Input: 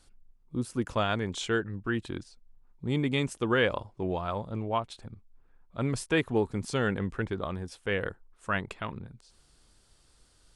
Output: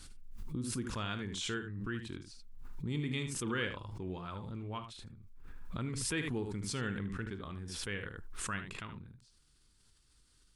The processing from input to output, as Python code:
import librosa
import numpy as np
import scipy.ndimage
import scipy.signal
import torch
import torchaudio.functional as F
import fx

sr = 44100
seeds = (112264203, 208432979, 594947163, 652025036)

y = fx.peak_eq(x, sr, hz=640.0, db=-12.5, octaves=1.1)
y = fx.room_early_taps(y, sr, ms=(40, 76), db=(-13.0, -9.5))
y = fx.pre_swell(y, sr, db_per_s=28.0)
y = y * librosa.db_to_amplitude(-7.5)